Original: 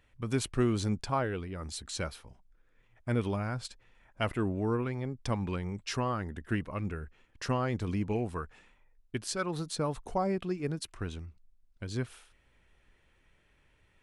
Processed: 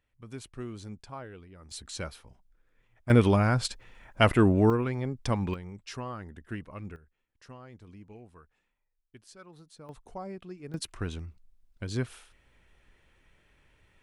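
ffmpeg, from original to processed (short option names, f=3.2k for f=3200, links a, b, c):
-af "asetnsamples=n=441:p=0,asendcmd='1.71 volume volume -1.5dB;3.1 volume volume 10dB;4.7 volume volume 3.5dB;5.54 volume volume -6dB;6.96 volume volume -17.5dB;9.89 volume volume -9.5dB;10.74 volume volume 3dB',volume=-11.5dB"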